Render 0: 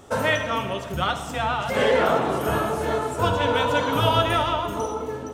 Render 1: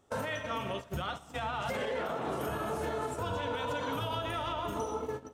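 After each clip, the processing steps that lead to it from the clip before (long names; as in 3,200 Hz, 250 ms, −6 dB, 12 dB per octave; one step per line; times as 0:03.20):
downward compressor 10 to 1, threshold −24 dBFS, peak gain reduction 10 dB
noise gate −30 dBFS, range −16 dB
brickwall limiter −21.5 dBFS, peak gain reduction 7 dB
level −4 dB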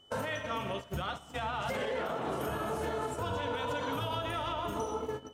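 steady tone 3,000 Hz −59 dBFS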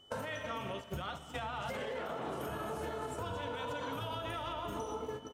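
downward compressor, threshold −36 dBFS, peak gain reduction 6 dB
repeating echo 218 ms, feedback 52%, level −17 dB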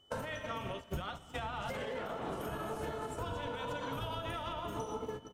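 sub-octave generator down 1 octave, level −4 dB
expander for the loud parts 1.5 to 1, over −48 dBFS
level +1.5 dB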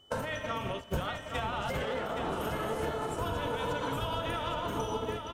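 single-tap delay 820 ms −6.5 dB
level +5 dB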